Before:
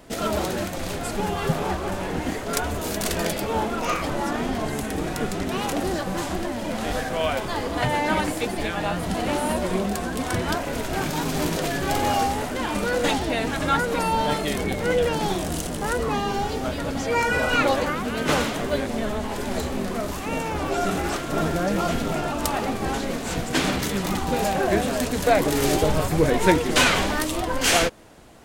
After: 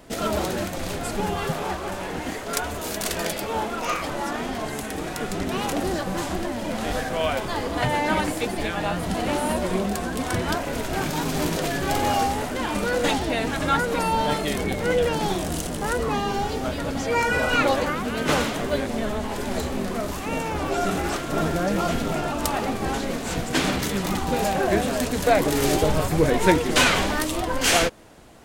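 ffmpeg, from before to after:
-filter_complex "[0:a]asettb=1/sr,asplit=3[a][b][c];[a]atrim=end=1.444[d];[b]atrim=start=1.44:end=5.3,asetpts=PTS-STARTPTS,afade=t=in:d=0.004:c=qsin,afade=t=out:st=3.856:d=0.004:c=qsin,lowshelf=f=390:g=-6[e];[c]atrim=start=5.296[f];[d][e]acrossfade=d=0.004:c1=hsin:c2=qsin[g];[g][f]acrossfade=d=0.004:c1=qsin:c2=hsin"

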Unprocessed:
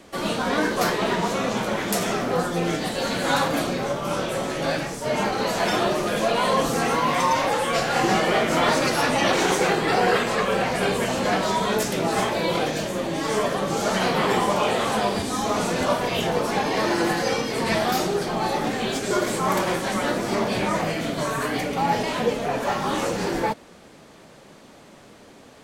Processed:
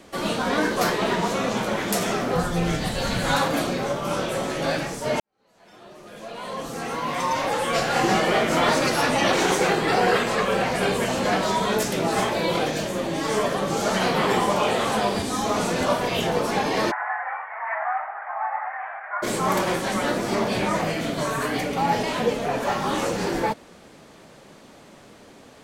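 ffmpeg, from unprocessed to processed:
-filter_complex "[0:a]asplit=3[a][b][c];[a]afade=t=out:st=2.34:d=0.02[d];[b]asubboost=boost=7.5:cutoff=120,afade=t=in:st=2.34:d=0.02,afade=t=out:st=3.34:d=0.02[e];[c]afade=t=in:st=3.34:d=0.02[f];[d][e][f]amix=inputs=3:normalize=0,asplit=3[g][h][i];[g]afade=t=out:st=16.9:d=0.02[j];[h]asuperpass=centerf=1200:order=12:qfactor=0.86,afade=t=in:st=16.9:d=0.02,afade=t=out:st=19.22:d=0.02[k];[i]afade=t=in:st=19.22:d=0.02[l];[j][k][l]amix=inputs=3:normalize=0,asplit=2[m][n];[m]atrim=end=5.2,asetpts=PTS-STARTPTS,afade=t=out:st=5.196:d=0.004:c=hsin[o];[n]atrim=start=5.2,asetpts=PTS-STARTPTS,afade=t=in:d=2.58:c=qua[p];[o][p]concat=n=2:v=0:a=1"

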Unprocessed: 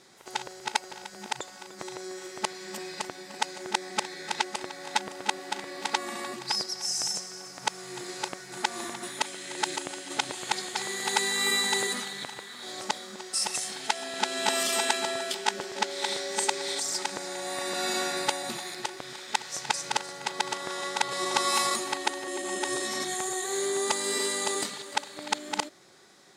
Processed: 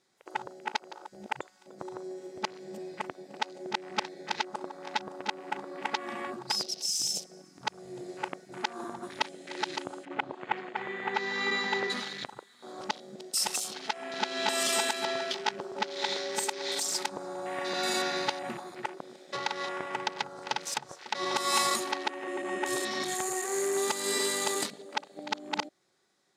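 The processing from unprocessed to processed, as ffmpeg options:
-filter_complex "[0:a]asettb=1/sr,asplit=3[a][b][c];[a]atrim=end=10.054[d];[b]atrim=start=10.05:end=11.9,asetpts=PTS-STARTPTS,afade=t=in:d=0.004:c=qsin,afade=t=out:st=1.846:d=0.004:c=qsin,highpass=120,lowpass=2.7k[e];[c]atrim=start=11.896[f];[d][e]acrossfade=d=0.004:c1=hsin:c2=qsin[g];[g][f]acrossfade=d=0.004:c1=qsin:c2=hsin,asplit=3[h][i][j];[h]atrim=end=19.332[k];[i]atrim=start=19.328:end=21.152,asetpts=PTS-STARTPTS,areverse[l];[j]atrim=start=21.148[m];[k][l]acrossfade=d=0.004:c1=hsin:c2=hsin[n];[n][m]acrossfade=d=0.004:c1=hsin:c2=hsin,afwtdn=0.0126,alimiter=limit=-13dB:level=0:latency=1:release=178"

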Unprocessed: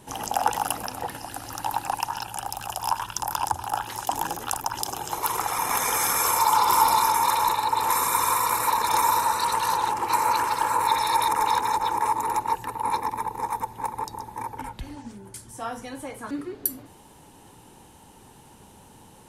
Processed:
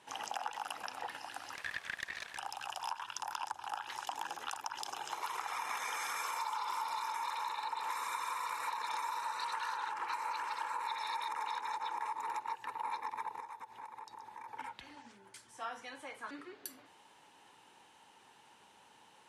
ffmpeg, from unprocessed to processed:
-filter_complex "[0:a]asettb=1/sr,asplit=3[a][b][c];[a]atrim=end=1.554[d];[b]atrim=start=1.55:end=2.38,asetpts=PTS-STARTPTS,afade=t=in:d=0.004:c=qsin,afade=t=out:st=0.826:d=0.004:c=qsin,aeval=exprs='abs(val(0))':c=same[e];[c]atrim=start=2.376[f];[d][e]acrossfade=d=0.004:c1=hsin:c2=qsin[g];[g][f]acrossfade=d=0.004:c1=qsin:c2=hsin,asettb=1/sr,asplit=3[h][i][j];[h]atrim=end=9.534[k];[i]atrim=start=9.53:end=10.14,asetpts=PTS-STARTPTS,afade=t=in:d=0.004:c=qsin,afade=t=out:st=0.606:d=0.004:c=qsin,equalizer=f=1.5k:w=2.4:g=7[l];[j]atrim=start=10.136[m];[k][l]acrossfade=d=0.004:c1=hsin:c2=qsin[n];[n][m]acrossfade=d=0.004:c1=qsin:c2=hsin,asplit=3[o][p][q];[o]afade=t=out:st=13.39:d=0.02[r];[p]acompressor=threshold=-36dB:ratio=6:attack=3.2:release=140:knee=1:detection=peak,afade=t=in:st=13.39:d=0.02,afade=t=out:st=14.47:d=0.02[s];[q]afade=t=in:st=14.47:d=0.02[t];[r][s][t]amix=inputs=3:normalize=0,lowpass=2.2k,aderivative,acompressor=threshold=-45dB:ratio=6,volume=9.5dB"

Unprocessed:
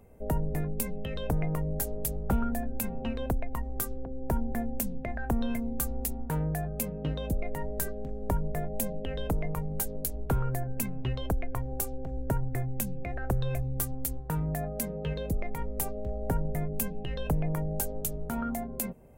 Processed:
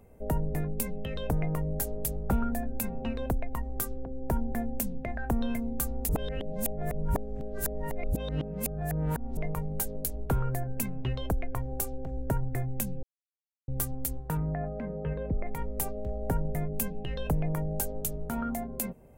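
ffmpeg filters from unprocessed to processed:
-filter_complex "[0:a]asettb=1/sr,asplit=3[a][b][c];[a]atrim=end=2.234[d];[b]atrim=start=2.23:end=3.25,asetpts=PTS-STARTPTS,afade=t=in:d=0.004:c=qsin,afade=t=out:st=1.016:d=0.004:c=qsin,bandreject=f=3.1k:w=14[e];[c]atrim=start=3.246[f];[d][e]acrossfade=d=0.004:c1=hsin:c2=qsin[g];[g][f]acrossfade=d=0.004:c1=qsin:c2=hsin,asettb=1/sr,asplit=3[h][i][j];[h]atrim=end=14.374[k];[i]atrim=start=14.37:end=15.47,asetpts=PTS-STARTPTS,afade=t=in:d=0.004:c=qsin,afade=t=out:st=1.096:d=0.004:c=qsin,lowpass=f=2k:w=0.5412,lowpass=f=2k:w=1.3066[l];[j]atrim=start=15.466[m];[k][l]acrossfade=d=0.004:c1=hsin:c2=qsin[n];[n][m]acrossfade=d=0.004:c1=qsin:c2=hsin,asplit=5[o][p][q][r][s];[o]atrim=end=6.092[t];[p]atrim=start=6.088:end=9.372,asetpts=PTS-STARTPTS,areverse[u];[q]atrim=start=9.368:end=13.03,asetpts=PTS-STARTPTS,afade=t=out:st=3.658:d=0.004:c=hsin[v];[r]atrim=start=13.03:end=13.68,asetpts=PTS-STARTPTS,volume=0[w];[s]atrim=start=13.68,asetpts=PTS-STARTPTS,afade=t=in:d=0.004:c=hsin[x];[t][u]acrossfade=d=0.004:c1=hsin:c2=hsin[y];[v][w][x]concat=n=3:v=0:a=1[z];[y][z]acrossfade=d=0.004:c1=hsin:c2=hsin"

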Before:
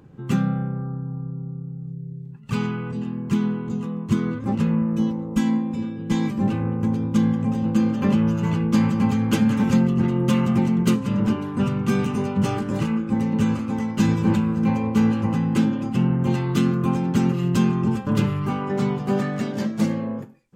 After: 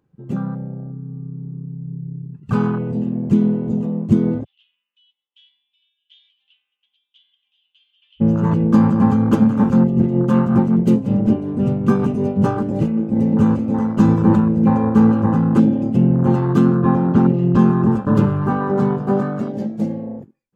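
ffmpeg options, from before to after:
-filter_complex "[0:a]asplit=3[a][b][c];[a]afade=t=out:st=4.43:d=0.02[d];[b]asuperpass=centerf=3200:order=4:qfactor=5.2,afade=t=in:st=4.43:d=0.02,afade=t=out:st=8.2:d=0.02[e];[c]afade=t=in:st=8.2:d=0.02[f];[d][e][f]amix=inputs=3:normalize=0,asplit=3[g][h][i];[g]afade=t=out:st=9.34:d=0.02[j];[h]tremolo=f=5.3:d=0.41,afade=t=in:st=9.34:d=0.02,afade=t=out:st=13.19:d=0.02[k];[i]afade=t=in:st=13.19:d=0.02[l];[j][k][l]amix=inputs=3:normalize=0,asettb=1/sr,asplit=3[m][n][o];[m]atrim=end=16.784[p];[n]atrim=start=16.78:end=17.59,asetpts=PTS-STARTPTS,afade=t=in:d=0.004:c=qsin,afade=t=out:st=0.806:d=0.004:c=qsin,lowpass=4.1k[q];[o]atrim=start=17.586[r];[p][q]acrossfade=d=0.004:c1=hsin:c2=qsin[s];[s][r]acrossfade=d=0.004:c1=qsin:c2=hsin,afwtdn=0.0355,equalizer=f=110:w=0.49:g=-3.5,dynaudnorm=f=270:g=13:m=11.5dB"

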